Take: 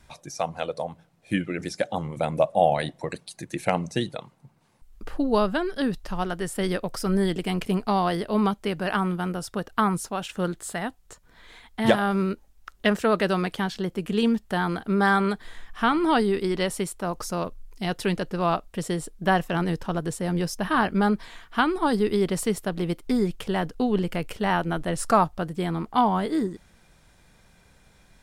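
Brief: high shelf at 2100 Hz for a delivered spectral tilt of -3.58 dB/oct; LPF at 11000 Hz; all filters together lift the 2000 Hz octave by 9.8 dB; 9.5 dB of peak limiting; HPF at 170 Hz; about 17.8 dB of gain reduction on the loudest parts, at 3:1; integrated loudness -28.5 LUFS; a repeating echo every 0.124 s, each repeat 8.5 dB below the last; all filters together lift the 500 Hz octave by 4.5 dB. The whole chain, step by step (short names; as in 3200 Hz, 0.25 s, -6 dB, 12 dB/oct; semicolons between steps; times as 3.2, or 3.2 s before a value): HPF 170 Hz; LPF 11000 Hz; bell 500 Hz +5 dB; bell 2000 Hz +8.5 dB; high shelf 2100 Hz +7.5 dB; compressor 3:1, threshold -34 dBFS; limiter -22 dBFS; feedback echo 0.124 s, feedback 38%, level -8.5 dB; gain +6.5 dB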